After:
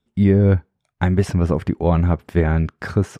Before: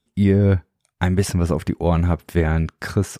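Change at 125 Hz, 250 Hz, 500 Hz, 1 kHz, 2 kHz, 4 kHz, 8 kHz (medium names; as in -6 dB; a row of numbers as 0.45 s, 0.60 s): +1.5 dB, +1.5 dB, +1.5 dB, +1.0 dB, -0.5 dB, -4.5 dB, -9.0 dB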